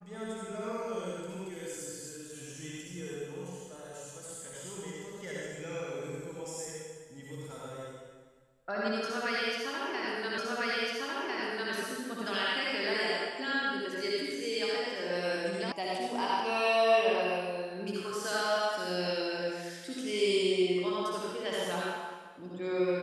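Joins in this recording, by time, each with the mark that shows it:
10.38 repeat of the last 1.35 s
15.72 sound cut off

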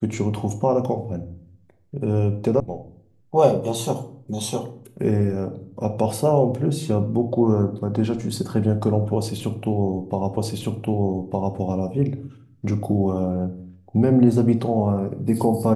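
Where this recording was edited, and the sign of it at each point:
2.6 sound cut off
10.37 repeat of the last 1.21 s

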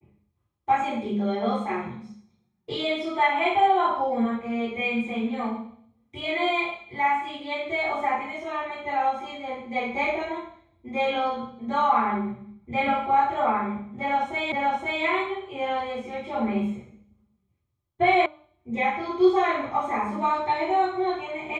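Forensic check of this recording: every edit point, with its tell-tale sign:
14.52 repeat of the last 0.52 s
18.26 sound cut off

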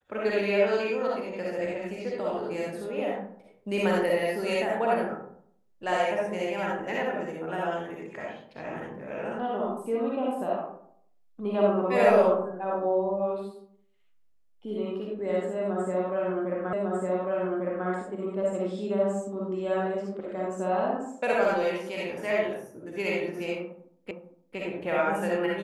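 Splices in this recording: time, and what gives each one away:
16.73 repeat of the last 1.15 s
24.11 repeat of the last 0.46 s

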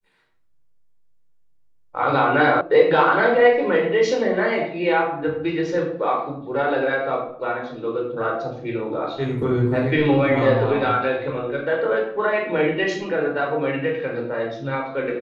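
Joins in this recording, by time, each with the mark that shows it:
2.61 sound cut off

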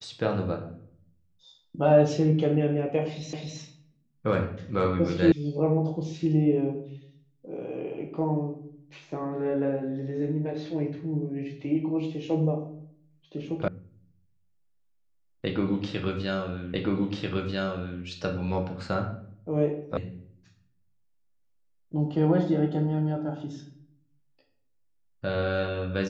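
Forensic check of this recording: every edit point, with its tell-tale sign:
3.33 repeat of the last 0.26 s
5.32 sound cut off
13.68 sound cut off
16.74 repeat of the last 1.29 s
19.97 sound cut off

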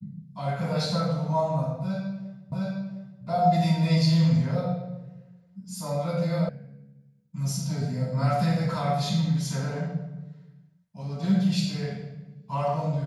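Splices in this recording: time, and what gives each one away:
2.52 repeat of the last 0.71 s
6.49 sound cut off

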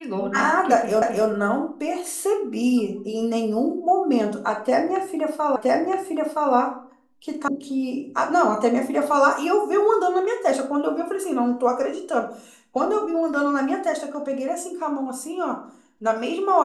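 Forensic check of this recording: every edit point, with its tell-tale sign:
1.02 repeat of the last 0.26 s
5.56 repeat of the last 0.97 s
7.48 sound cut off

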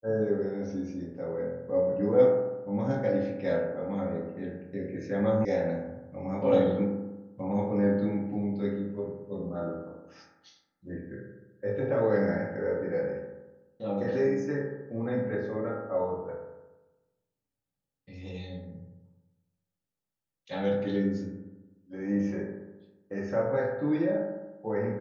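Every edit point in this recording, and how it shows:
5.45 sound cut off

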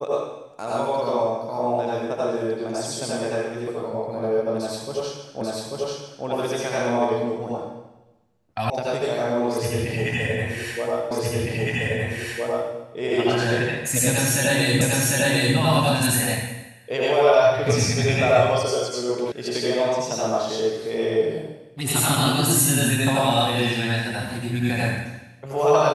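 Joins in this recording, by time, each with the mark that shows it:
5.41 repeat of the last 0.84 s
8.7 sound cut off
11.11 repeat of the last 1.61 s
14.81 repeat of the last 0.75 s
19.32 sound cut off

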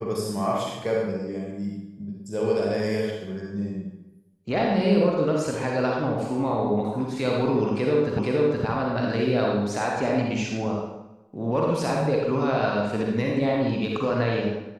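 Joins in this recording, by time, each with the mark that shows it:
8.19 repeat of the last 0.47 s

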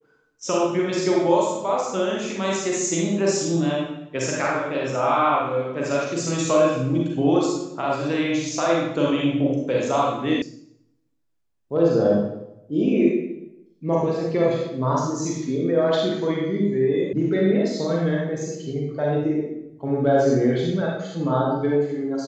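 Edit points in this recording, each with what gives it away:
10.42 sound cut off
17.13 sound cut off

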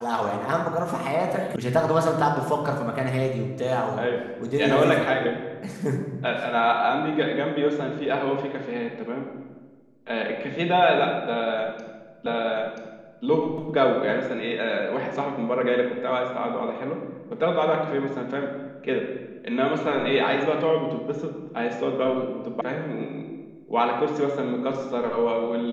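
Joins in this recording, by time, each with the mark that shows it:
1.56 sound cut off
12.26 repeat of the last 0.98 s
22.61 sound cut off

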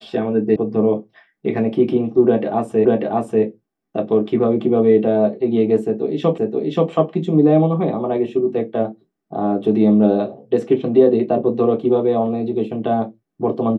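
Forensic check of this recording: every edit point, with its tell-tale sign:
0.56 sound cut off
2.85 repeat of the last 0.59 s
6.38 repeat of the last 0.53 s

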